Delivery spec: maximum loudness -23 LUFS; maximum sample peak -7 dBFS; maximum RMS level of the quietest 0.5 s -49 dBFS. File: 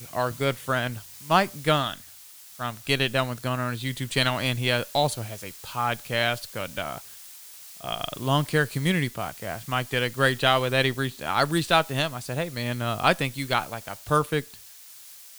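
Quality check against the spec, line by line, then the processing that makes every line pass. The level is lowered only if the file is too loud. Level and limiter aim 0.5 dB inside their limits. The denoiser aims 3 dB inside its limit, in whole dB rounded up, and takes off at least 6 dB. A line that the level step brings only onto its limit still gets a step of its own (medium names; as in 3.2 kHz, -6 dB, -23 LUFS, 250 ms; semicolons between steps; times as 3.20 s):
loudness -26.0 LUFS: pass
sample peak -3.5 dBFS: fail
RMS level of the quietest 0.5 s -47 dBFS: fail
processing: noise reduction 6 dB, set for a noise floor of -47 dBFS; peak limiter -7.5 dBFS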